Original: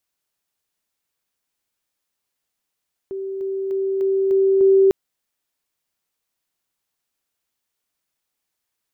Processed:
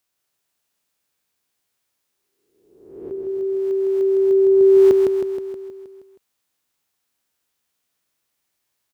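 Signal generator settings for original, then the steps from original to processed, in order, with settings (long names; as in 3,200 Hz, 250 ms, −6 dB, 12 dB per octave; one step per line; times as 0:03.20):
level staircase 387 Hz −25 dBFS, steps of 3 dB, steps 6, 0.30 s 0.00 s
peak hold with a rise ahead of every peak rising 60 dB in 0.93 s
high-pass filter 47 Hz
on a send: repeating echo 158 ms, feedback 58%, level −4 dB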